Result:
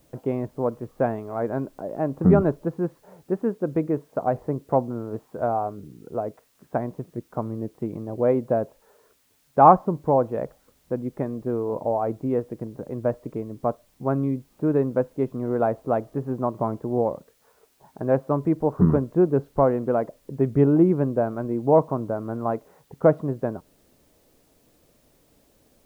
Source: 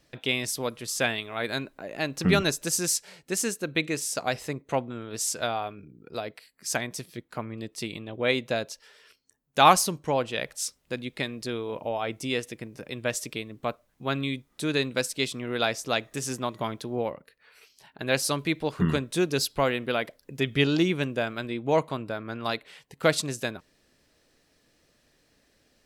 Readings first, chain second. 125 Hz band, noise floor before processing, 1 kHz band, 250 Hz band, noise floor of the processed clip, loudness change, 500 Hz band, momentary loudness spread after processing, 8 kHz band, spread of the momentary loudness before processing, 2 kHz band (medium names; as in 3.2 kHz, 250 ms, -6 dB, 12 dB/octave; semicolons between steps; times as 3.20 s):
+6.5 dB, -68 dBFS, +4.5 dB, +6.5 dB, -63 dBFS, +4.0 dB, +6.5 dB, 13 LU, under -25 dB, 13 LU, -12.5 dB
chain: low-pass 1 kHz 24 dB/octave; word length cut 12-bit, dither triangular; trim +6.5 dB